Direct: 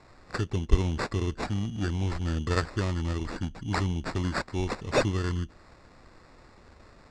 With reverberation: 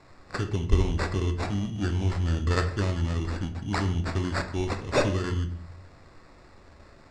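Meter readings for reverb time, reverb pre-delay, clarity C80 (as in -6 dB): 0.55 s, 7 ms, 15.0 dB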